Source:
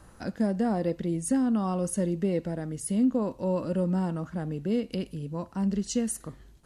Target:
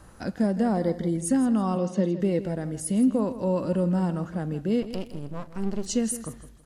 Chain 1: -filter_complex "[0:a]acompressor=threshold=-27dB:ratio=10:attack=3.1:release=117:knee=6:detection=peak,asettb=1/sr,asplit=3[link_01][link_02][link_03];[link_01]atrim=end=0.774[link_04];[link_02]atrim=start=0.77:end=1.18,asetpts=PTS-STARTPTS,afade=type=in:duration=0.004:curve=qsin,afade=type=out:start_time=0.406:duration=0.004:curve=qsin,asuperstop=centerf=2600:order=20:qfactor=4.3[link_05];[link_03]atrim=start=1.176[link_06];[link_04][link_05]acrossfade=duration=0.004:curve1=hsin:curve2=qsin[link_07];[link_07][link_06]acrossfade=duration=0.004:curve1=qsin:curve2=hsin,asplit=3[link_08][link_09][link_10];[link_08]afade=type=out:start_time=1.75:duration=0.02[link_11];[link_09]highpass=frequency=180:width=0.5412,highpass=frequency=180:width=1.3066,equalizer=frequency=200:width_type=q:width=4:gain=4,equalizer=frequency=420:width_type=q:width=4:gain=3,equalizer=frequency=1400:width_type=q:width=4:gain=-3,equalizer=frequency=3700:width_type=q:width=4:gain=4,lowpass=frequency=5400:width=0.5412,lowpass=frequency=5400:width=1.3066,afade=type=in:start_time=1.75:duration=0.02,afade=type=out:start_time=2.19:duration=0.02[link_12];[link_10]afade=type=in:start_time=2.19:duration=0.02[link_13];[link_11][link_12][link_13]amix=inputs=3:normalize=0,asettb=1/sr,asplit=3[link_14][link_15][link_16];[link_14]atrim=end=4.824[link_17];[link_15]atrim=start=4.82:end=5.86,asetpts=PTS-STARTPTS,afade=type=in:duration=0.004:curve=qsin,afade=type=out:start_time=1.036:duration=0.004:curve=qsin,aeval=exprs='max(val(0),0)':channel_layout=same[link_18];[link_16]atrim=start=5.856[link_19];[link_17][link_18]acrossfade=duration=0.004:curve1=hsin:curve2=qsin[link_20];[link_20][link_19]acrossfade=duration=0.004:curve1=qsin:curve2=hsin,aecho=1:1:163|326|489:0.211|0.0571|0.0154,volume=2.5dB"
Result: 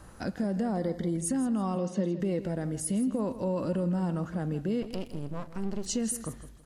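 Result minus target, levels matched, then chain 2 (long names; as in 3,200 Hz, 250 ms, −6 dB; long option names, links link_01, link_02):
downward compressor: peak gain reduction +9 dB
-filter_complex "[0:a]asettb=1/sr,asplit=3[link_01][link_02][link_03];[link_01]atrim=end=0.774[link_04];[link_02]atrim=start=0.77:end=1.18,asetpts=PTS-STARTPTS,afade=type=in:duration=0.004:curve=qsin,afade=type=out:start_time=0.406:duration=0.004:curve=qsin,asuperstop=centerf=2600:order=20:qfactor=4.3[link_05];[link_03]atrim=start=1.176[link_06];[link_04][link_05]acrossfade=duration=0.004:curve1=hsin:curve2=qsin[link_07];[link_07][link_06]acrossfade=duration=0.004:curve1=qsin:curve2=hsin,asplit=3[link_08][link_09][link_10];[link_08]afade=type=out:start_time=1.75:duration=0.02[link_11];[link_09]highpass=frequency=180:width=0.5412,highpass=frequency=180:width=1.3066,equalizer=frequency=200:width_type=q:width=4:gain=4,equalizer=frequency=420:width_type=q:width=4:gain=3,equalizer=frequency=1400:width_type=q:width=4:gain=-3,equalizer=frequency=3700:width_type=q:width=4:gain=4,lowpass=frequency=5400:width=0.5412,lowpass=frequency=5400:width=1.3066,afade=type=in:start_time=1.75:duration=0.02,afade=type=out:start_time=2.19:duration=0.02[link_12];[link_10]afade=type=in:start_time=2.19:duration=0.02[link_13];[link_11][link_12][link_13]amix=inputs=3:normalize=0,asettb=1/sr,asplit=3[link_14][link_15][link_16];[link_14]atrim=end=4.824[link_17];[link_15]atrim=start=4.82:end=5.86,asetpts=PTS-STARTPTS,afade=type=in:duration=0.004:curve=qsin,afade=type=out:start_time=1.036:duration=0.004:curve=qsin,aeval=exprs='max(val(0),0)':channel_layout=same[link_18];[link_16]atrim=start=5.856[link_19];[link_17][link_18]acrossfade=duration=0.004:curve1=hsin:curve2=qsin[link_20];[link_20][link_19]acrossfade=duration=0.004:curve1=qsin:curve2=hsin,aecho=1:1:163|326|489:0.211|0.0571|0.0154,volume=2.5dB"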